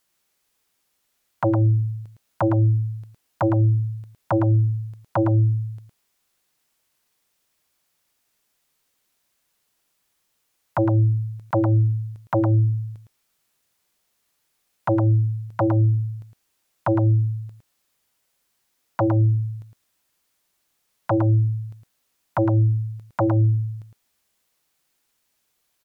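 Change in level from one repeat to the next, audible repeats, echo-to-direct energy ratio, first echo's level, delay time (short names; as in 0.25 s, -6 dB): no steady repeat, 1, -7.0 dB, -7.0 dB, 0.11 s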